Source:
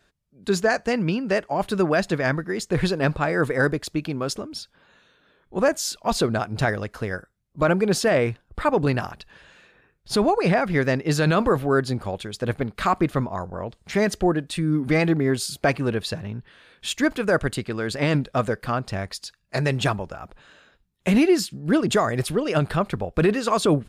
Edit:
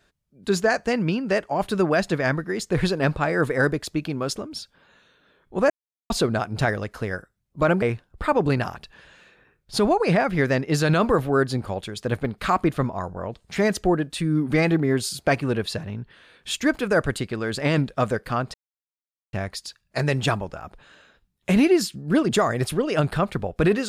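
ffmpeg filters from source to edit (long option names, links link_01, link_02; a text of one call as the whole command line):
ffmpeg -i in.wav -filter_complex "[0:a]asplit=5[link_01][link_02][link_03][link_04][link_05];[link_01]atrim=end=5.7,asetpts=PTS-STARTPTS,afade=type=out:start_time=5.696:duration=0.004:curve=hsin[link_06];[link_02]atrim=start=5.7:end=6.1,asetpts=PTS-STARTPTS,volume=0[link_07];[link_03]atrim=start=6.1:end=7.822,asetpts=PTS-STARTPTS,afade=type=in:duration=0.004:curve=hsin[link_08];[link_04]atrim=start=8.188:end=18.91,asetpts=PTS-STARTPTS,afade=type=out:start_time=10.718:duration=0.004:curve=hsin,apad=pad_dur=0.79[link_09];[link_05]atrim=start=18.91,asetpts=PTS-STARTPTS,afade=type=in:duration=0.004:curve=hsin[link_10];[link_06][link_07][link_08]concat=n=3:v=0:a=1[link_11];[link_09][link_10]concat=n=2:v=0:a=1[link_12];[link_11][link_12]acrossfade=duration=0.004:curve1=hsin:curve2=hsin" out.wav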